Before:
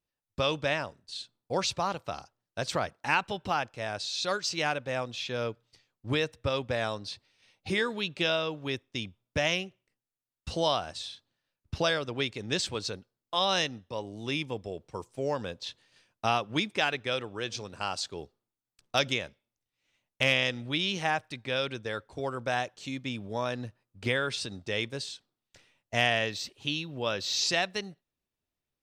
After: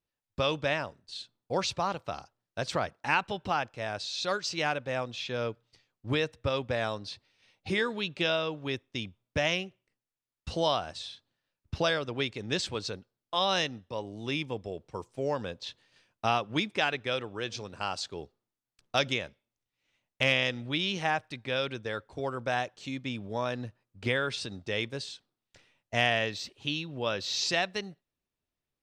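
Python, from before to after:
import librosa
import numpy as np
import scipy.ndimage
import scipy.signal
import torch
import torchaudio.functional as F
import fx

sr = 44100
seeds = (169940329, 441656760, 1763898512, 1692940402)

y = fx.high_shelf(x, sr, hz=8100.0, db=-9.0)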